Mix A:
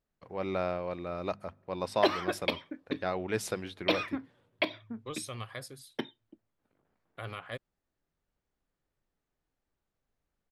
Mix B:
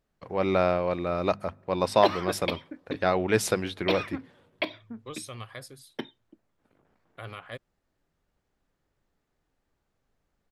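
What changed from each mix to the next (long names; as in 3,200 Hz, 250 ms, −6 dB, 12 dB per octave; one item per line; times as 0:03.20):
first voice +8.5 dB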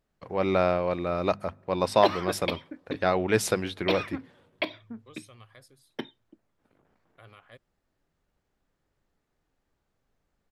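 second voice −11.5 dB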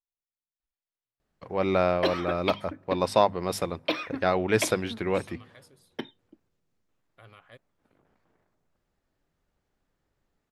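first voice: entry +1.20 s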